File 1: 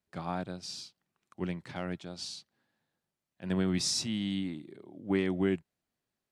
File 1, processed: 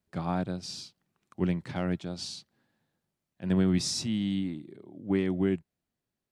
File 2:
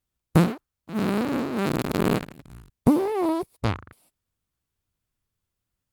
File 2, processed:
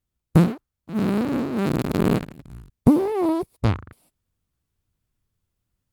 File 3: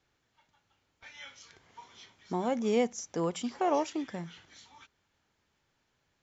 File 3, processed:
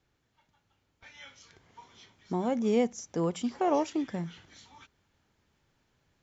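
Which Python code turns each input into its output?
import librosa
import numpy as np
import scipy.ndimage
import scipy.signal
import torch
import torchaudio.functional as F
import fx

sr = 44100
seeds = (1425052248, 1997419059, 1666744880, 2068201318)

p1 = fx.low_shelf(x, sr, hz=400.0, db=7.0)
p2 = fx.rider(p1, sr, range_db=10, speed_s=2.0)
p3 = p1 + (p2 * 10.0 ** (-0.5 / 20.0))
y = p3 * 10.0 ** (-7.5 / 20.0)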